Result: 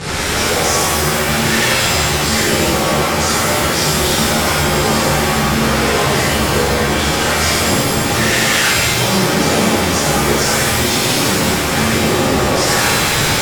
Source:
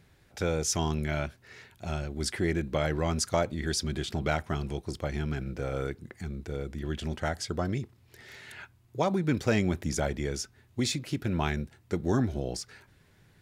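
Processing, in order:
linear delta modulator 64 kbit/s, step −23.5 dBFS
low-pass filter 9,400 Hz 24 dB per octave
low-shelf EQ 96 Hz −9.5 dB
notch filter 660 Hz
boost into a limiter +19.5 dB
reverb with rising layers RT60 1.8 s, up +7 semitones, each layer −2 dB, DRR −10.5 dB
level −16 dB

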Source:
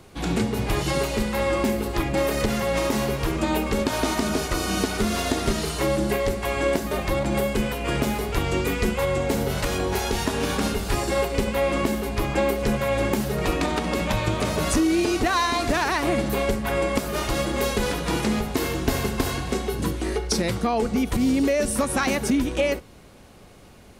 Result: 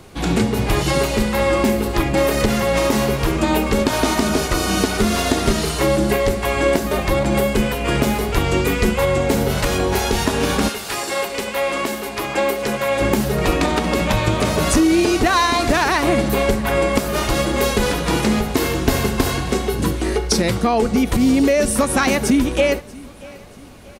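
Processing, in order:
0:10.68–0:13.00: high-pass filter 1,200 Hz → 370 Hz 6 dB per octave
repeating echo 636 ms, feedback 40%, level −22 dB
level +6 dB

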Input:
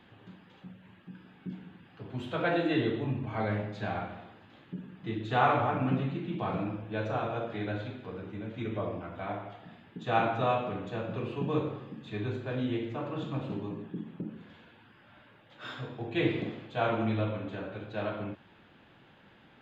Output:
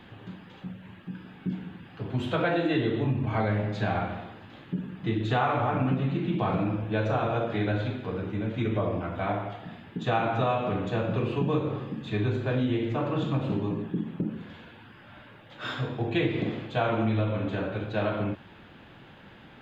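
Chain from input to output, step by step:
low-shelf EQ 110 Hz +5.5 dB
downward compressor 5 to 1, threshold −30 dBFS, peak gain reduction 10 dB
level +7.5 dB

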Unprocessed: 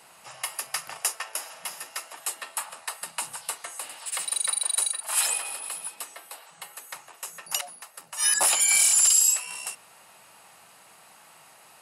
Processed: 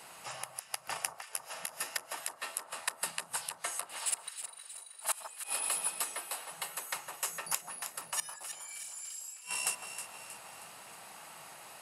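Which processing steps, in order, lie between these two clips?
gate with flip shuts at −19 dBFS, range −27 dB
on a send: delay that swaps between a low-pass and a high-pass 158 ms, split 1,400 Hz, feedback 69%, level −6.5 dB
on the sum: level +1.5 dB

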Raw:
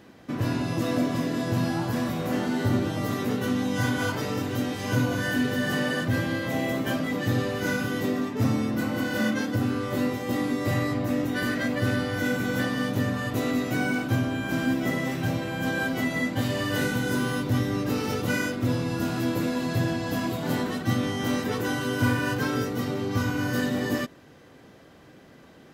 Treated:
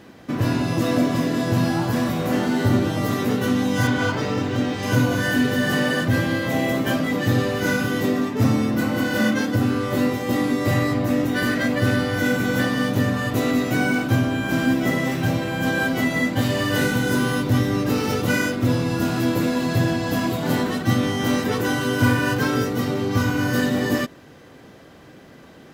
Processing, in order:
0:03.87–0:04.83: Bessel low-pass filter 5,200 Hz, order 2
level +5.5 dB
IMA ADPCM 176 kbit/s 44,100 Hz

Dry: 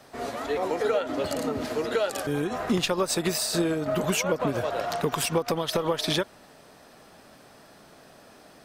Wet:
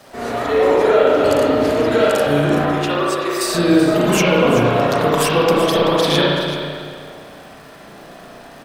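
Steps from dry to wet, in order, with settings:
0:02.65–0:03.41: Chebyshev high-pass with heavy ripple 340 Hz, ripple 9 dB
surface crackle 510 per second −46 dBFS
single-tap delay 382 ms −12 dB
spring reverb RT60 1.9 s, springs 34/59 ms, chirp 40 ms, DRR −6 dB
level +5.5 dB

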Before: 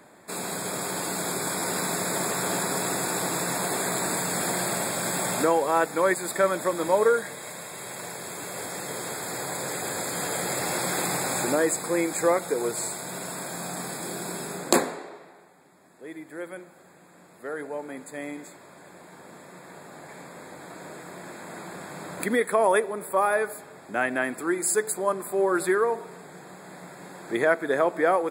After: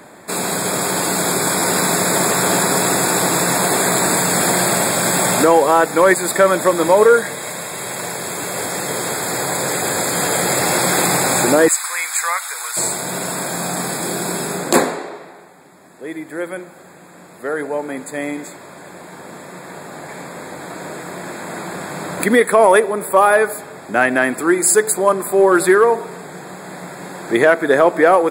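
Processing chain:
0:11.68–0:12.77: high-pass filter 1,100 Hz 24 dB per octave
in parallel at −8 dB: hard clipping −17 dBFS, distortion −16 dB
on the sum: boost into a limiter +9.5 dB
level −1 dB

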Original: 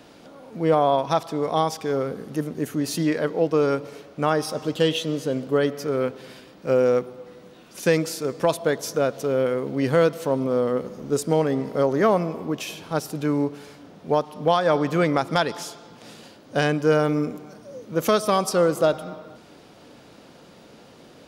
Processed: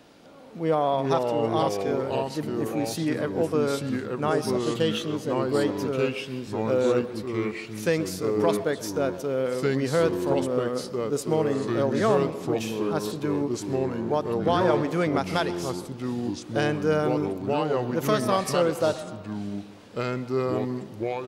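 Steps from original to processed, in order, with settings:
far-end echo of a speakerphone 130 ms, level −15 dB
delay with pitch and tempo change per echo 276 ms, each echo −3 semitones, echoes 2
level −4.5 dB

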